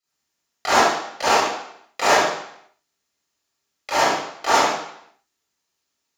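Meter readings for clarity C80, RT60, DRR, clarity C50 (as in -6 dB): 2.5 dB, 0.70 s, -12.0 dB, -3.0 dB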